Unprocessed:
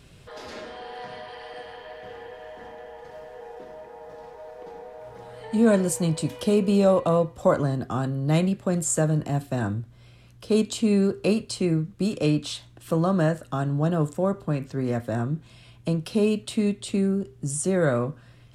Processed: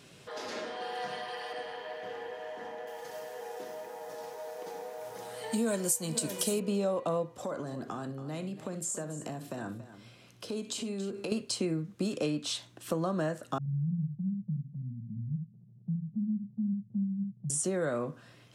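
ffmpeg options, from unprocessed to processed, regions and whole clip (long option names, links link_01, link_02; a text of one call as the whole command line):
ffmpeg -i in.wav -filter_complex "[0:a]asettb=1/sr,asplit=3[link_01][link_02][link_03];[link_01]atrim=end=0.804[link_04];[link_02]atrim=start=0.8:end=1.53,asetpts=PTS-STARTPTS,afade=type=in:duration=0.004:curve=qsin,afade=type=out:start_time=0.726:duration=0.004:curve=qsin,highshelf=frequency=8900:gain=10.5,aecho=1:1:5.7:0.43,atrim=end_sample=32193[link_05];[link_03]atrim=start=1.526[link_06];[link_04][link_05]acrossfade=duration=0.004:curve1=hsin:curve2=qsin[link_07];[link_07][link_06]acrossfade=duration=0.004:curve1=qsin:curve2=hsin,asettb=1/sr,asplit=3[link_08][link_09][link_10];[link_08]atrim=end=2.874[link_11];[link_09]atrim=start=2.87:end=6.6,asetpts=PTS-STARTPTS,afade=type=in:duration=0.004:curve=qsin,afade=type=out:start_time=3.726:duration=0.004:curve=qsin,aemphasis=mode=production:type=75fm,aecho=1:1:501|565:0.112|0.15,atrim=end_sample=164493[link_12];[link_10]atrim=start=6.596[link_13];[link_11][link_12]acrossfade=duration=0.004:curve1=hsin:curve2=qsin[link_14];[link_14][link_13]acrossfade=duration=0.004:curve1=qsin:curve2=hsin,asettb=1/sr,asplit=3[link_15][link_16][link_17];[link_15]atrim=end=7.384[link_18];[link_16]atrim=start=7.38:end=11.32,asetpts=PTS-STARTPTS,afade=type=in:duration=0.004:curve=qsin,afade=type=out:start_time=3.936:duration=0.004:curve=qsin,acompressor=threshold=-34dB:ratio=4:attack=3.2:release=140:knee=1:detection=peak,aecho=1:1:61|281:0.2|0.211,atrim=end_sample=173754[link_19];[link_17]atrim=start=11.316[link_20];[link_18][link_19]acrossfade=duration=0.004:curve1=hsin:curve2=qsin[link_21];[link_21][link_20]acrossfade=duration=0.004:curve1=qsin:curve2=hsin,asettb=1/sr,asplit=3[link_22][link_23][link_24];[link_22]atrim=end=13.584[link_25];[link_23]atrim=start=13.58:end=17.5,asetpts=PTS-STARTPTS,afade=type=in:duration=0.004:curve=qsin,afade=type=out:start_time=3.916:duration=0.004:curve=qsin,asuperpass=centerf=150:order=12:qfactor=1.4,acompressor=mode=upward:threshold=-39dB:ratio=2.5:attack=3.2:release=140:knee=2.83:detection=peak,aecho=1:1:70:0.473,atrim=end_sample=172872[link_26];[link_24]atrim=start=17.496[link_27];[link_25][link_26]acrossfade=duration=0.004:curve1=hsin:curve2=qsin[link_28];[link_28][link_27]acrossfade=duration=0.004:curve1=qsin:curve2=hsin,highpass=190,equalizer=frequency=6100:width=2.7:gain=3.5,acompressor=threshold=-29dB:ratio=4" out.wav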